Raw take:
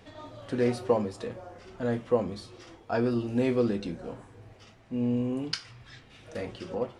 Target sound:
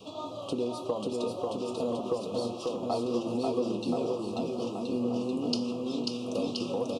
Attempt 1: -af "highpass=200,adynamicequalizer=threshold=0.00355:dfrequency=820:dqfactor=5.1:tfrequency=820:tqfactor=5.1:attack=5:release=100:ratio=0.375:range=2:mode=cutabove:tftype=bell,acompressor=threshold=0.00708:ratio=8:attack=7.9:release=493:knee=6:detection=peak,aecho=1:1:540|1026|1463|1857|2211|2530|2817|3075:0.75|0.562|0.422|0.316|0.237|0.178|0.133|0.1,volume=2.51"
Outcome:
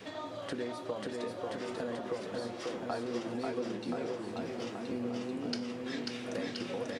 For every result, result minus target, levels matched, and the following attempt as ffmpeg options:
2 kHz band +12.5 dB; compression: peak gain reduction +6.5 dB
-af "highpass=200,adynamicequalizer=threshold=0.00355:dfrequency=820:dqfactor=5.1:tfrequency=820:tqfactor=5.1:attack=5:release=100:ratio=0.375:range=2:mode=cutabove:tftype=bell,asuperstop=centerf=1800:order=12:qfactor=1.4,acompressor=threshold=0.00708:ratio=8:attack=7.9:release=493:knee=6:detection=peak,aecho=1:1:540|1026|1463|1857|2211|2530|2817|3075:0.75|0.562|0.422|0.316|0.237|0.178|0.133|0.1,volume=2.51"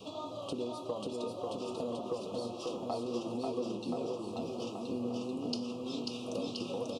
compression: peak gain reduction +6.5 dB
-af "highpass=200,adynamicequalizer=threshold=0.00355:dfrequency=820:dqfactor=5.1:tfrequency=820:tqfactor=5.1:attack=5:release=100:ratio=0.375:range=2:mode=cutabove:tftype=bell,asuperstop=centerf=1800:order=12:qfactor=1.4,acompressor=threshold=0.0168:ratio=8:attack=7.9:release=493:knee=6:detection=peak,aecho=1:1:540|1026|1463|1857|2211|2530|2817|3075:0.75|0.562|0.422|0.316|0.237|0.178|0.133|0.1,volume=2.51"

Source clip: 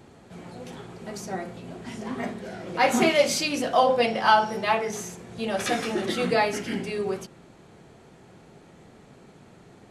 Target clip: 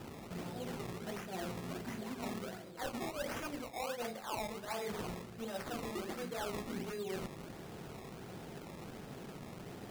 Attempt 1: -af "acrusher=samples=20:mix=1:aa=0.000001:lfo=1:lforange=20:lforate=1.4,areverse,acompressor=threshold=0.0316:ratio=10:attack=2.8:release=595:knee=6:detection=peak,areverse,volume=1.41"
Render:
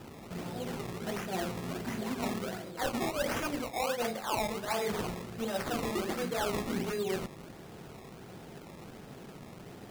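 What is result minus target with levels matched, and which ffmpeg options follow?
compression: peak gain reduction -7.5 dB
-af "acrusher=samples=20:mix=1:aa=0.000001:lfo=1:lforange=20:lforate=1.4,areverse,acompressor=threshold=0.0119:ratio=10:attack=2.8:release=595:knee=6:detection=peak,areverse,volume=1.41"

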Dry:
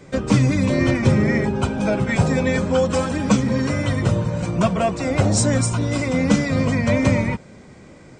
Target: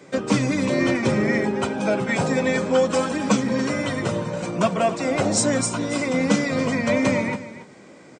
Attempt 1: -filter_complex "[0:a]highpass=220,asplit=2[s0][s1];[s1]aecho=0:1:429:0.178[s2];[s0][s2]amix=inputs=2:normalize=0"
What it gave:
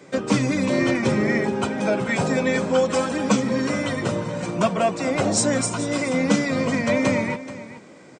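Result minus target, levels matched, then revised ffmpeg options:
echo 149 ms late
-filter_complex "[0:a]highpass=220,asplit=2[s0][s1];[s1]aecho=0:1:280:0.178[s2];[s0][s2]amix=inputs=2:normalize=0"

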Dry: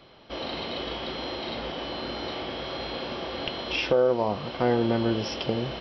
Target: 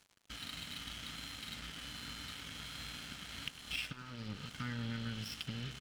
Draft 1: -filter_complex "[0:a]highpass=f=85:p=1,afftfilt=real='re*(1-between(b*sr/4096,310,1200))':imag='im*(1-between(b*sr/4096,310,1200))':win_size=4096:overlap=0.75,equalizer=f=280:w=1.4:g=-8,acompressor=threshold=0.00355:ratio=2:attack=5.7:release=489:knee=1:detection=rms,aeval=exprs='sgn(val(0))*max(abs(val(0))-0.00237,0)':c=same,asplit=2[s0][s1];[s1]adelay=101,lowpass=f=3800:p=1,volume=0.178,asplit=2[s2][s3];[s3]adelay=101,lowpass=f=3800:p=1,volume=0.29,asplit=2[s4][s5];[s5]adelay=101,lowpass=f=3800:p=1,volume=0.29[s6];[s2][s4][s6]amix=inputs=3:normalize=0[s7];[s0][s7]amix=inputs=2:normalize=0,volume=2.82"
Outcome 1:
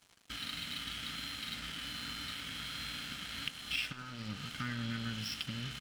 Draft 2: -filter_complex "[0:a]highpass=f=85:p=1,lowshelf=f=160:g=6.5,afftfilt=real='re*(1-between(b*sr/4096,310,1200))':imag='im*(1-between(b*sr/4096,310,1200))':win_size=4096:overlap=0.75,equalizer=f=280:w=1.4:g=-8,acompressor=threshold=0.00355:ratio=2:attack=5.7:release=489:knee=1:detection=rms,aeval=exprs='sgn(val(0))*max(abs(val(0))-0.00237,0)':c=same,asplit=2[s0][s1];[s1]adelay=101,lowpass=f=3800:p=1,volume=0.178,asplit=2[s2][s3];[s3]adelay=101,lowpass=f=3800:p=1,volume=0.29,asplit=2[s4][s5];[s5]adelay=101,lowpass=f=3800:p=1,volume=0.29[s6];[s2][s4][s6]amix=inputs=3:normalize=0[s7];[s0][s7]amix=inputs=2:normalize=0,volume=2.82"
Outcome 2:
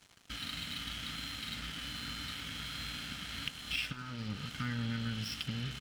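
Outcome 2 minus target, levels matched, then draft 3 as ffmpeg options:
compression: peak gain reduction -3 dB
-filter_complex "[0:a]highpass=f=85:p=1,lowshelf=f=160:g=6.5,afftfilt=real='re*(1-between(b*sr/4096,310,1200))':imag='im*(1-between(b*sr/4096,310,1200))':win_size=4096:overlap=0.75,equalizer=f=280:w=1.4:g=-8,acompressor=threshold=0.00178:ratio=2:attack=5.7:release=489:knee=1:detection=rms,aeval=exprs='sgn(val(0))*max(abs(val(0))-0.00237,0)':c=same,asplit=2[s0][s1];[s1]adelay=101,lowpass=f=3800:p=1,volume=0.178,asplit=2[s2][s3];[s3]adelay=101,lowpass=f=3800:p=1,volume=0.29,asplit=2[s4][s5];[s5]adelay=101,lowpass=f=3800:p=1,volume=0.29[s6];[s2][s4][s6]amix=inputs=3:normalize=0[s7];[s0][s7]amix=inputs=2:normalize=0,volume=2.82"

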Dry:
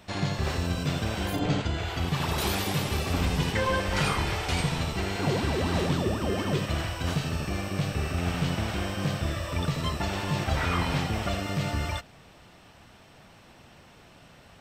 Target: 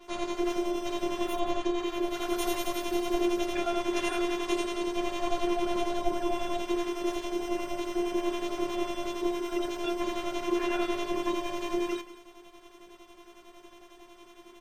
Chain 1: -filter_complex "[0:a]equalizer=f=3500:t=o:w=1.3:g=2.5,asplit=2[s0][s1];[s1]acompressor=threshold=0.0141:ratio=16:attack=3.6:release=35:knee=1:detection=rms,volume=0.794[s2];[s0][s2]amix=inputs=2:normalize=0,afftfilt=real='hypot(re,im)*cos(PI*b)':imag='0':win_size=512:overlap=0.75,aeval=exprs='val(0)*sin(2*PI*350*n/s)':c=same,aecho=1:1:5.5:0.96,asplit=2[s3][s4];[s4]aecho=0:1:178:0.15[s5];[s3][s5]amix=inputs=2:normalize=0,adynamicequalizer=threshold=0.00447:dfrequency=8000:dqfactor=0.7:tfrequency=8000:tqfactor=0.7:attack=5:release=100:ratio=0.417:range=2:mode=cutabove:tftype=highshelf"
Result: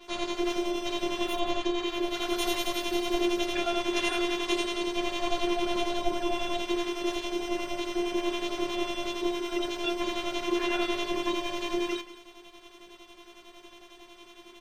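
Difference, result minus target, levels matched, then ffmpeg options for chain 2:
4 kHz band +5.5 dB
-filter_complex "[0:a]equalizer=f=3500:t=o:w=1.3:g=-5,asplit=2[s0][s1];[s1]acompressor=threshold=0.0141:ratio=16:attack=3.6:release=35:knee=1:detection=rms,volume=0.794[s2];[s0][s2]amix=inputs=2:normalize=0,afftfilt=real='hypot(re,im)*cos(PI*b)':imag='0':win_size=512:overlap=0.75,aeval=exprs='val(0)*sin(2*PI*350*n/s)':c=same,aecho=1:1:5.5:0.96,asplit=2[s3][s4];[s4]aecho=0:1:178:0.15[s5];[s3][s5]amix=inputs=2:normalize=0,adynamicequalizer=threshold=0.00447:dfrequency=8000:dqfactor=0.7:tfrequency=8000:tqfactor=0.7:attack=5:release=100:ratio=0.417:range=2:mode=cutabove:tftype=highshelf"

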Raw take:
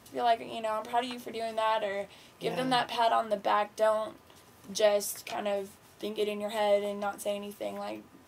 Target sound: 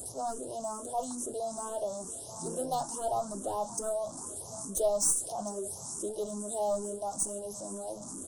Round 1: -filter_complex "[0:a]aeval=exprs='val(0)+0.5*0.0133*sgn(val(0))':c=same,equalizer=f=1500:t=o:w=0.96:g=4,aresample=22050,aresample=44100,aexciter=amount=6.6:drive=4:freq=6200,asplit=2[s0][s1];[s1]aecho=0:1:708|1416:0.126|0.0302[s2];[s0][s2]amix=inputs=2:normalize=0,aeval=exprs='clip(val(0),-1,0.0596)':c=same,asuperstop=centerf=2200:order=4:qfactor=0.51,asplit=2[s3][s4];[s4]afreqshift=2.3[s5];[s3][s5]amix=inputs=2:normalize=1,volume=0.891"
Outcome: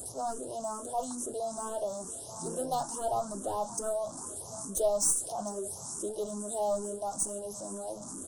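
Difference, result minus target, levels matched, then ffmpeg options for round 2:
2 kHz band +3.0 dB
-filter_complex "[0:a]aeval=exprs='val(0)+0.5*0.0133*sgn(val(0))':c=same,aresample=22050,aresample=44100,aexciter=amount=6.6:drive=4:freq=6200,asplit=2[s0][s1];[s1]aecho=0:1:708|1416:0.126|0.0302[s2];[s0][s2]amix=inputs=2:normalize=0,aeval=exprs='clip(val(0),-1,0.0596)':c=same,asuperstop=centerf=2200:order=4:qfactor=0.51,asplit=2[s3][s4];[s4]afreqshift=2.3[s5];[s3][s5]amix=inputs=2:normalize=1,volume=0.891"

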